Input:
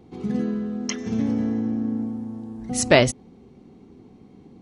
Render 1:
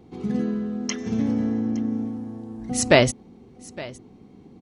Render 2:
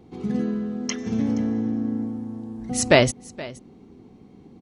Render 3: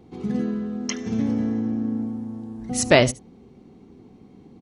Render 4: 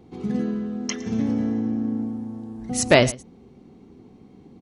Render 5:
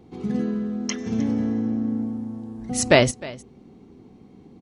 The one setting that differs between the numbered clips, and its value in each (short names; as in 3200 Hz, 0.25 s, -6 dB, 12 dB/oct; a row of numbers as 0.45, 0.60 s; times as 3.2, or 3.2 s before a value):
echo, time: 864, 473, 73, 111, 309 ms